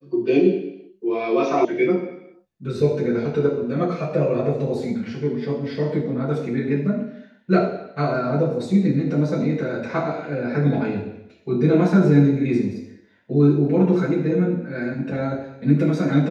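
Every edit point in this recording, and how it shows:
1.65 s: sound stops dead

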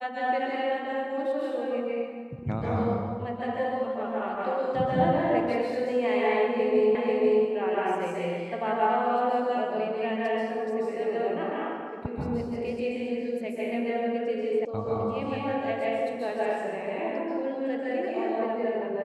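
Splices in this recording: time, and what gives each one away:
6.95 s: repeat of the last 0.49 s
14.65 s: sound stops dead

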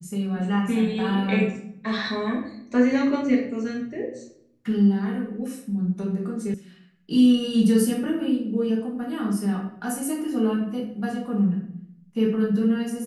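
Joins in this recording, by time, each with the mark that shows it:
6.54 s: sound stops dead

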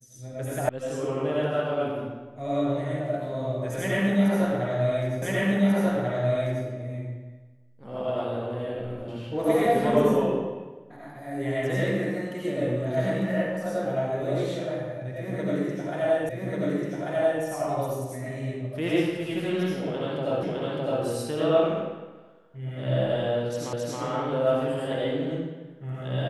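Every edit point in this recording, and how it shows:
0.69 s: sound stops dead
5.22 s: repeat of the last 1.44 s
16.29 s: repeat of the last 1.14 s
20.43 s: repeat of the last 0.61 s
23.73 s: repeat of the last 0.27 s

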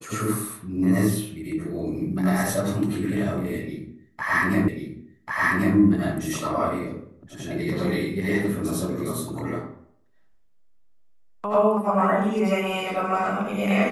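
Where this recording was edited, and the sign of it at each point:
4.68 s: repeat of the last 1.09 s

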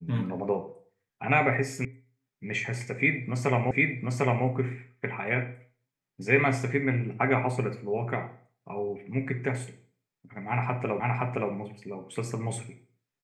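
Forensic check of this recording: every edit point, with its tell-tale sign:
1.85 s: sound stops dead
3.71 s: repeat of the last 0.75 s
11.00 s: repeat of the last 0.52 s

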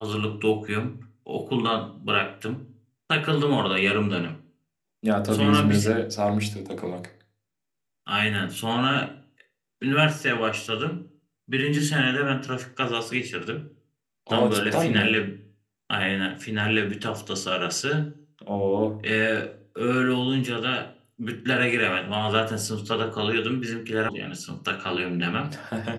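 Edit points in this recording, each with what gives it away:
24.09 s: sound stops dead

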